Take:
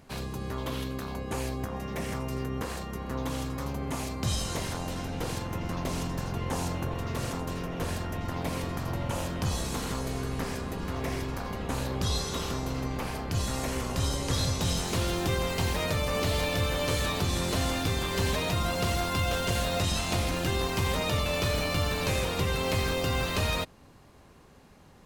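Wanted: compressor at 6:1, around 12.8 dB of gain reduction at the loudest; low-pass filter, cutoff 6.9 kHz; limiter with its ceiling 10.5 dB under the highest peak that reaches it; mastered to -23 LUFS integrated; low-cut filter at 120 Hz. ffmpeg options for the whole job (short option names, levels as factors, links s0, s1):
-af "highpass=120,lowpass=6900,acompressor=threshold=0.01:ratio=6,volume=14.1,alimiter=limit=0.2:level=0:latency=1"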